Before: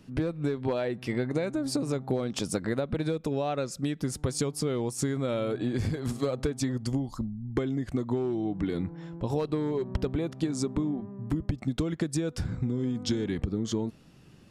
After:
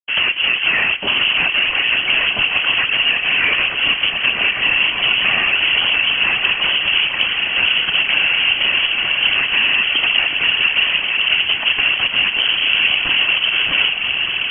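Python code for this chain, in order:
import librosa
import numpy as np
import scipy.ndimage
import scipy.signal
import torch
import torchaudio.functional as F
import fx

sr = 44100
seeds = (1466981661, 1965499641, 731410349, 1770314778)

p1 = fx.lower_of_two(x, sr, delay_ms=2.5)
p2 = fx.low_shelf(p1, sr, hz=120.0, db=-9.0)
p3 = fx.fuzz(p2, sr, gain_db=41.0, gate_db=-49.0)
p4 = p3 + fx.echo_diffused(p3, sr, ms=1089, feedback_pct=71, wet_db=-7.0, dry=0)
p5 = fx.freq_invert(p4, sr, carrier_hz=3100)
p6 = fx.whisperise(p5, sr, seeds[0])
p7 = fx.band_squash(p6, sr, depth_pct=40)
y = F.gain(torch.from_numpy(p7), -2.0).numpy()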